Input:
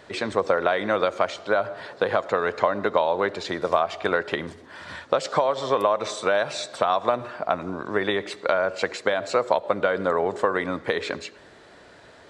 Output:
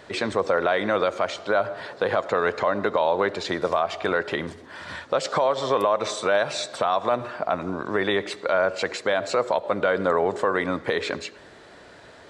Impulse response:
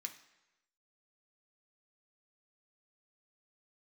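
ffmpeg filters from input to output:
-af "alimiter=limit=-13dB:level=0:latency=1:release=14,volume=2dB"

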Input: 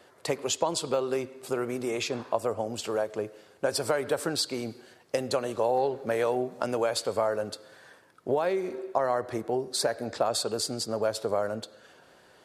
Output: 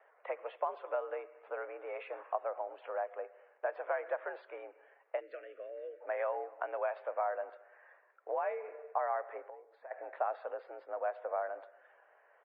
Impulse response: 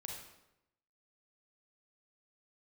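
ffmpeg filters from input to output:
-filter_complex "[0:a]asplit=3[a][b][c];[a]afade=t=out:st=5.19:d=0.02[d];[b]asuperstop=centerf=820:order=4:qfactor=0.59,afade=t=in:st=5.19:d=0.02,afade=t=out:st=6:d=0.02[e];[c]afade=t=in:st=6:d=0.02[f];[d][e][f]amix=inputs=3:normalize=0,asettb=1/sr,asplit=3[g][h][i];[g]atrim=end=9.454[j];[h]atrim=start=9.45:end=9.91,asetpts=PTS-STARTPTS,afade=t=in:d=0.004:c=qsin,afade=t=out:st=0.456:d=0.004:c=qsin,acompressor=threshold=-39dB:ratio=6[k];[i]atrim=start=9.906[l];[j][k]acrossfade=d=0.004:c1=hsin:c2=qsin[m];[m][l]acrossfade=d=0.004:c1=qsin:c2=hsin,asplit=2[n][o];[o]adelay=230,highpass=300,lowpass=3.4k,asoftclip=type=hard:threshold=-19dB,volume=-22dB[p];[n][p]amix=inputs=2:normalize=0,highpass=f=430:t=q:w=0.5412,highpass=f=430:t=q:w=1.307,lowpass=f=2.2k:t=q:w=0.5176,lowpass=f=2.2k:t=q:w=0.7071,lowpass=f=2.2k:t=q:w=1.932,afreqshift=70,volume=-6.5dB" -ar 22050 -c:a libmp3lame -b:a 24k

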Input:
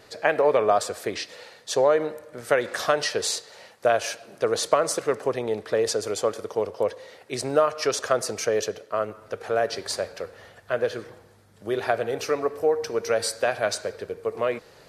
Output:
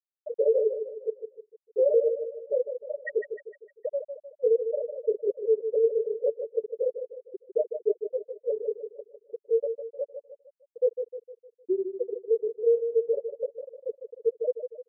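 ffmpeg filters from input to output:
-filter_complex "[0:a]flanger=delay=15.5:depth=6.8:speed=1.1,asplit=2[a][b];[b]aeval=exprs='(mod(10*val(0)+1,2)-1)/10':c=same,volume=-4.5dB[c];[a][c]amix=inputs=2:normalize=0,aecho=1:1:2.2:0.66,bandreject=f=53.48:t=h:w=4,bandreject=f=106.96:t=h:w=4,bandreject=f=160.44:t=h:w=4,bandreject=f=213.92:t=h:w=4,bandreject=f=267.4:t=h:w=4,bandreject=f=320.88:t=h:w=4,bandreject=f=374.36:t=h:w=4,bandreject=f=427.84:t=h:w=4,bandreject=f=481.32:t=h:w=4,bandreject=f=534.8:t=h:w=4,bandreject=f=588.28:t=h:w=4,bandreject=f=641.76:t=h:w=4,bandreject=f=695.24:t=h:w=4,bandreject=f=748.72:t=h:w=4,bandreject=f=802.2:t=h:w=4,bandreject=f=855.68:t=h:w=4,bandreject=f=909.16:t=h:w=4,bandreject=f=962.64:t=h:w=4,bandreject=f=1.01612k:t=h:w=4,bandreject=f=1.0696k:t=h:w=4,bandreject=f=1.12308k:t=h:w=4,bandreject=f=1.17656k:t=h:w=4,bandreject=f=1.23004k:t=h:w=4,bandreject=f=1.28352k:t=h:w=4,bandreject=f=1.337k:t=h:w=4,bandreject=f=1.39048k:t=h:w=4,bandreject=f=1.44396k:t=h:w=4,bandreject=f=1.49744k:t=h:w=4,bandreject=f=1.55092k:t=h:w=4,bandreject=f=1.6044k:t=h:w=4,afftfilt=real='re*gte(hypot(re,im),0.708)':imag='im*gte(hypot(re,im),0.708)':win_size=1024:overlap=0.75,asplit=2[d][e];[e]aecho=0:1:153|306|459|612|765:0.376|0.169|0.0761|0.0342|0.0154[f];[d][f]amix=inputs=2:normalize=0,volume=-1dB"

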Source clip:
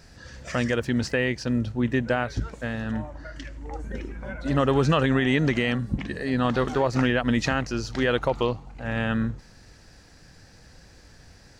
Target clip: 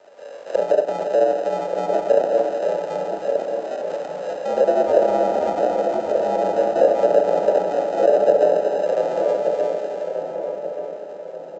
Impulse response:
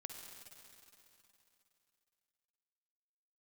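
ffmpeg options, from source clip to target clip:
-filter_complex "[1:a]atrim=start_sample=2205,asetrate=43218,aresample=44100[a];[0:a][a]afir=irnorm=-1:irlink=0,aresample=16000,acrusher=samples=14:mix=1:aa=0.000001,aresample=44100,afreqshift=-61,acrossover=split=890[b][c];[c]acompressor=threshold=-48dB:ratio=6[d];[b][d]amix=inputs=2:normalize=0,highpass=f=580:t=q:w=4.3,highshelf=f=3.9k:g=-5.5,asplit=2[e][f];[f]adelay=1181,lowpass=f=930:p=1,volume=-4dB,asplit=2[g][h];[h]adelay=1181,lowpass=f=930:p=1,volume=0.47,asplit=2[i][j];[j]adelay=1181,lowpass=f=930:p=1,volume=0.47,asplit=2[k][l];[l]adelay=1181,lowpass=f=930:p=1,volume=0.47,asplit=2[m][n];[n]adelay=1181,lowpass=f=930:p=1,volume=0.47,asplit=2[o][p];[p]adelay=1181,lowpass=f=930:p=1,volume=0.47[q];[e][g][i][k][m][o][q]amix=inputs=7:normalize=0,volume=8.5dB"

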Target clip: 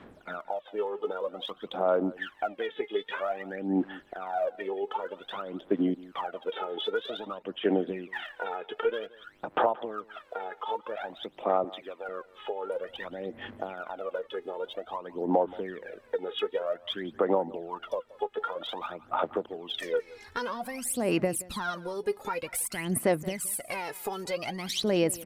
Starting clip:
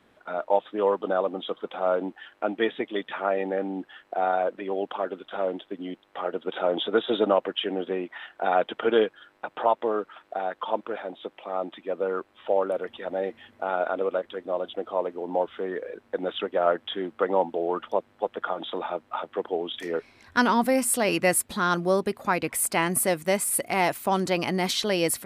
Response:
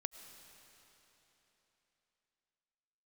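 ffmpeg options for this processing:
-filter_complex "[0:a]asettb=1/sr,asplit=3[a][b][c];[a]atrim=end=11.644[d];[b]atrim=start=11.64:end=12.09,asetpts=PTS-STARTPTS,afade=t=in:d=0.004:c=qsin,afade=t=out:st=0.446:d=0.004:c=qsin,highpass=390[e];[c]atrim=start=12.086[f];[d][e]acrossfade=d=0.004:c1=hsin:c2=qsin[g];[g][f]acrossfade=d=0.004:c1=qsin:c2=hsin,asplit=2[h][i];[i]alimiter=limit=-17dB:level=0:latency=1,volume=0dB[j];[h][j]amix=inputs=2:normalize=0,acompressor=threshold=-27dB:ratio=6,aphaser=in_gain=1:out_gain=1:delay=2.4:decay=0.78:speed=0.52:type=sinusoidal,aecho=1:1:175:0.0944,volume=-6.5dB"

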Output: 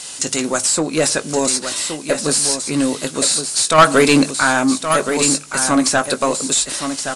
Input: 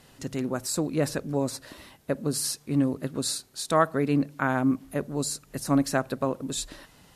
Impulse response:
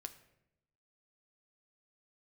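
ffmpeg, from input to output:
-filter_complex "[0:a]highshelf=f=3.4k:g=10.5,asplit=2[a][b];[b]adelay=19,volume=-12.5dB[c];[a][c]amix=inputs=2:normalize=0,acrossover=split=2700[d][e];[e]acompressor=threshold=-36dB:ratio=6[f];[d][f]amix=inputs=2:normalize=0,equalizer=f=8.6k:t=o:w=1.7:g=14,bandreject=f=1.8k:w=11,asplit=2[g][h];[h]highpass=f=720:p=1,volume=20dB,asoftclip=type=tanh:threshold=-4.5dB[i];[g][i]amix=inputs=2:normalize=0,lowpass=f=5.4k:p=1,volume=-6dB,aresample=22050,aresample=44100,asettb=1/sr,asplit=3[j][k][l];[j]atrim=end=3.784[m];[k]atrim=start=3.78:end=4.31,asetpts=PTS-STARTPTS,afade=t=in:d=0.004:c=qsin,afade=t=out:st=0.526:d=0.004:c=qsin,acontrast=55[n];[l]atrim=start=4.306[o];[m][n]acrossfade=d=0.004:c1=hsin:c2=qsin[p];[p][o]acrossfade=d=0.004:c1=qsin:c2=hsin,aecho=1:1:1121:0.398,volume=1dB"

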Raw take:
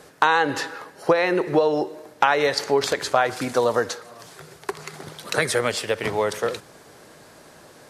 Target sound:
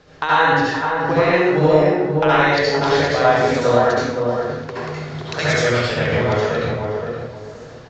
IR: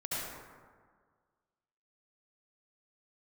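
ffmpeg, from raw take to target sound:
-filter_complex "[0:a]aemphasis=mode=reproduction:type=bsi,asplit=2[a][b];[b]adelay=521,lowpass=f=1k:p=1,volume=-3dB,asplit=2[c][d];[d]adelay=521,lowpass=f=1k:p=1,volume=0.29,asplit=2[e][f];[f]adelay=521,lowpass=f=1k:p=1,volume=0.29,asplit=2[g][h];[h]adelay=521,lowpass=f=1k:p=1,volume=0.29[i];[a][c][e][g][i]amix=inputs=5:normalize=0,acrossover=split=640|5500[j][k][l];[l]acrusher=samples=13:mix=1:aa=0.000001:lfo=1:lforange=20.8:lforate=0.5[m];[j][k][m]amix=inputs=3:normalize=0[n];[1:a]atrim=start_sample=2205,afade=t=out:st=0.35:d=0.01,atrim=end_sample=15876[o];[n][o]afir=irnorm=-1:irlink=0,crystalizer=i=5:c=0,aresample=16000,aresample=44100,volume=-2.5dB"

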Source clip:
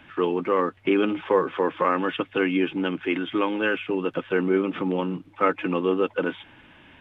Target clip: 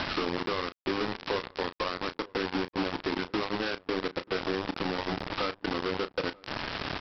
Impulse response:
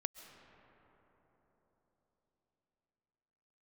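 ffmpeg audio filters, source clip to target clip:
-filter_complex "[0:a]aeval=exprs='val(0)+0.5*0.0708*sgn(val(0))':c=same,lowpass=f=1.7k:w=0.5412,lowpass=f=1.7k:w=1.3066,aemphasis=mode=reproduction:type=50fm,bandreject=f=60:t=h:w=6,bandreject=f=120:t=h:w=6,bandreject=f=180:t=h:w=6,bandreject=f=240:t=h:w=6,bandreject=f=300:t=h:w=6,bandreject=f=360:t=h:w=6,acompressor=threshold=-31dB:ratio=6,aresample=11025,acrusher=bits=4:mix=0:aa=0.000001,aresample=44100,asplit=2[a][b];[b]adelay=34,volume=-12dB[c];[a][c]amix=inputs=2:normalize=0,asplit=2[d][e];[e]adelay=935,lowpass=f=1.2k:p=1,volume=-24dB,asplit=2[f][g];[g]adelay=935,lowpass=f=1.2k:p=1,volume=0.32[h];[d][f][h]amix=inputs=3:normalize=0"

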